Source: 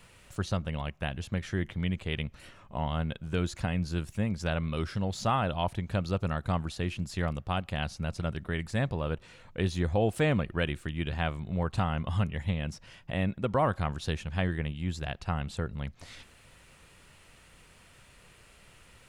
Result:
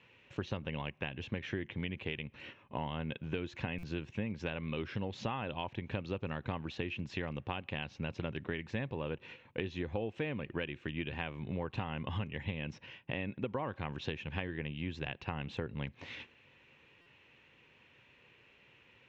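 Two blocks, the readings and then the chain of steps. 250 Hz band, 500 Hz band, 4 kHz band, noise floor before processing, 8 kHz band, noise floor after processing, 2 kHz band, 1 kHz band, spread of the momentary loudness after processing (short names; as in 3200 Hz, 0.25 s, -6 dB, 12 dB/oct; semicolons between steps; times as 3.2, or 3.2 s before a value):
-7.0 dB, -6.5 dB, -5.0 dB, -57 dBFS, under -15 dB, -64 dBFS, -4.0 dB, -9.0 dB, 4 LU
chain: gate -50 dBFS, range -8 dB; speaker cabinet 150–6400 Hz, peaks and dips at 180 Hz -8 dB, 670 Hz -9 dB, 1300 Hz -9 dB, 2600 Hz +6 dB, 4700 Hz -9 dB; compressor 10:1, threshold -38 dBFS, peak gain reduction 15 dB; air absorption 190 m; stuck buffer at 3.78/17.01, samples 256, times 8; gain +5.5 dB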